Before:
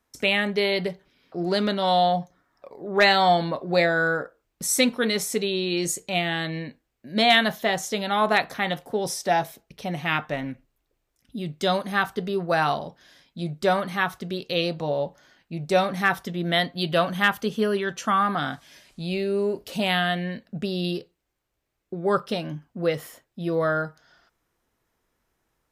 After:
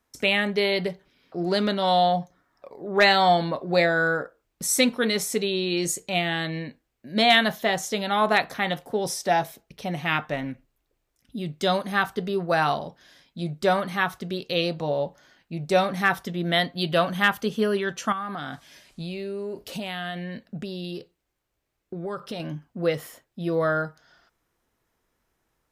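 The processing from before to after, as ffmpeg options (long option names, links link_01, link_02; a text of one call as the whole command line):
ffmpeg -i in.wav -filter_complex "[0:a]asettb=1/sr,asplit=3[link_01][link_02][link_03];[link_01]atrim=end=18.124[link_04];[link_02]atrim=start=18.12:end=22.4,asetpts=PTS-STARTPTS,afade=type=in:duration=0.004:curve=qsin,afade=type=out:start_time=4.276:duration=0.004:curve=qsin,acompressor=threshold=-29dB:ratio=5:attack=3.2:release=140:knee=1:detection=peak[link_05];[link_03]atrim=start=22.396[link_06];[link_04][link_05]acrossfade=duration=0.004:curve1=hsin:curve2=qsin[link_07];[link_07][link_06]acrossfade=duration=0.004:curve1=qsin:curve2=hsin" out.wav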